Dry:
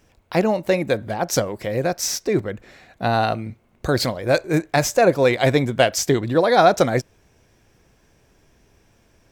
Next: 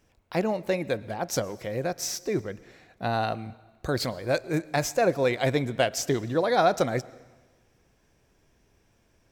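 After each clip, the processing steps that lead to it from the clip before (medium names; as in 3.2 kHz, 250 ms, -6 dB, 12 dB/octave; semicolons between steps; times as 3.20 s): reverberation RT60 1.3 s, pre-delay 102 ms, DRR 20.5 dB; trim -7.5 dB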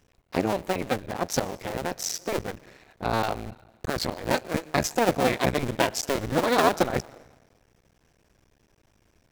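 cycle switcher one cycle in 2, muted; trim +3.5 dB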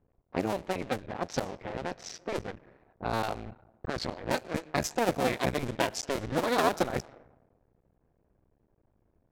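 level-controlled noise filter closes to 830 Hz, open at -21 dBFS; trim -5 dB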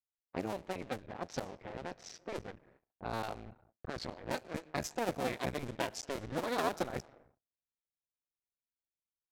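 gate -58 dBFS, range -35 dB; trim -7.5 dB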